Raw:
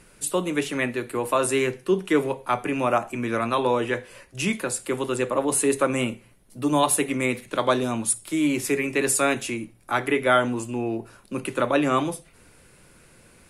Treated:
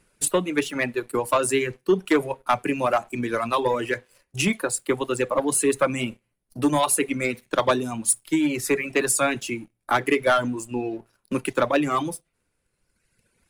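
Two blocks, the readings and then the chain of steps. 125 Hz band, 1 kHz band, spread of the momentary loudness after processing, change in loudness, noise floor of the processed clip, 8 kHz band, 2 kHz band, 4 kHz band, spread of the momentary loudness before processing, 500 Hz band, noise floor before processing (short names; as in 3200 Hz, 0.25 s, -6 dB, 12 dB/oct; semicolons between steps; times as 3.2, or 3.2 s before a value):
-1.0 dB, +0.5 dB, 9 LU, +0.5 dB, -75 dBFS, +1.5 dB, +0.5 dB, +0.5 dB, 9 LU, +0.5 dB, -54 dBFS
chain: transient shaper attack +6 dB, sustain +2 dB; sample leveller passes 2; reverb removal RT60 1.5 s; gain -7 dB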